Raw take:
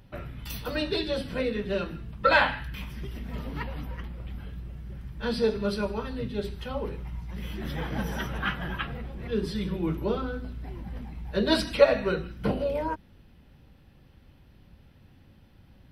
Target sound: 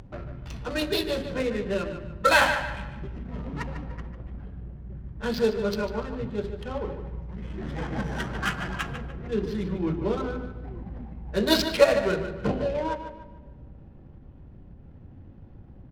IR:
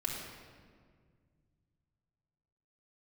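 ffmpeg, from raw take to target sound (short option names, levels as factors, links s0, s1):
-filter_complex "[0:a]acompressor=mode=upward:threshold=0.0112:ratio=2.5,lowpass=f=6700:t=q:w=4.9,adynamicsmooth=sensitivity=6:basefreq=720,asplit=2[s0][s1];[s1]adelay=148,lowpass=f=4900:p=1,volume=0.355,asplit=2[s2][s3];[s3]adelay=148,lowpass=f=4900:p=1,volume=0.36,asplit=2[s4][s5];[s5]adelay=148,lowpass=f=4900:p=1,volume=0.36,asplit=2[s6][s7];[s7]adelay=148,lowpass=f=4900:p=1,volume=0.36[s8];[s0][s2][s4][s6][s8]amix=inputs=5:normalize=0,asplit=2[s9][s10];[1:a]atrim=start_sample=2205[s11];[s10][s11]afir=irnorm=-1:irlink=0,volume=0.15[s12];[s9][s12]amix=inputs=2:normalize=0"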